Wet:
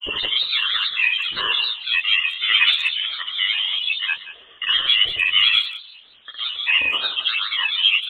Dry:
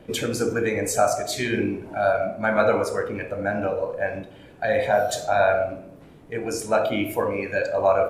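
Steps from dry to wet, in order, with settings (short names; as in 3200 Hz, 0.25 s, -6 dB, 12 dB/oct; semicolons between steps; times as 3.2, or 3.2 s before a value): inverted band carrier 3600 Hz; low-pass opened by the level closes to 2000 Hz, open at -20 dBFS; grains 0.129 s, grains 20/s, pitch spread up and down by 3 st; speakerphone echo 0.18 s, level -14 dB; gain +5 dB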